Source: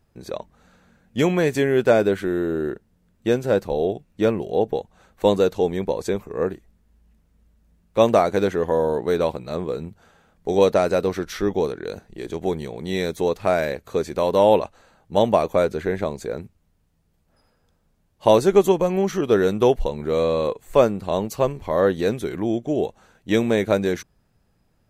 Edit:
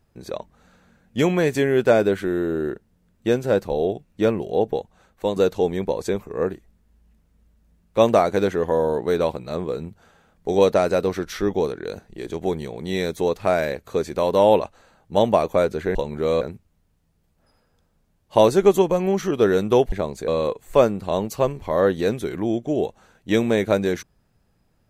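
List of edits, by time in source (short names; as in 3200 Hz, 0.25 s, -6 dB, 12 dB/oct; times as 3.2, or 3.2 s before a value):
4.8–5.36 fade out, to -7.5 dB
15.95–16.31 swap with 19.82–20.28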